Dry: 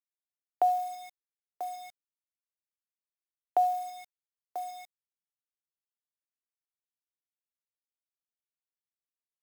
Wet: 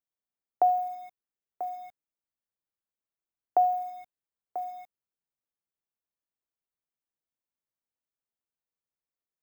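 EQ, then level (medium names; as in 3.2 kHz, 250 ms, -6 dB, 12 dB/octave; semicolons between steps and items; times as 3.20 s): peaking EQ 4 kHz -10.5 dB 2.2 oct; peaking EQ 10 kHz -14 dB 2.1 oct; +4.0 dB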